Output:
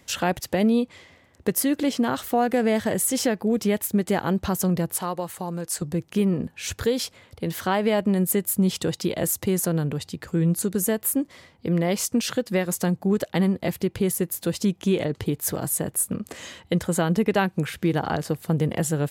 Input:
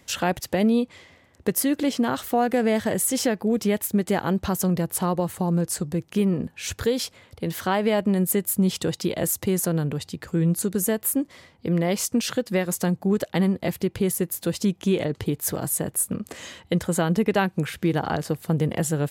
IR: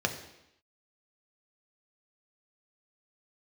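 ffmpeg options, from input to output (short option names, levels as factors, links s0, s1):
-filter_complex "[0:a]asettb=1/sr,asplit=3[s0][s1][s2];[s0]atrim=end=4.964[s3];[s1]atrim=start=4.96:end=5.82,asetpts=PTS-STARTPTS,afade=t=in:d=0.004:c=qsin,afade=t=out:st=0.856:d=0.004:c=qsin,lowshelf=f=390:g=-11.5[s4];[s2]atrim=start=5.816[s5];[s3][s4]acrossfade=d=0.004:c1=hsin:c2=qsin[s6];[s6][s5]acrossfade=d=0.004:c1=qsin:c2=hsin"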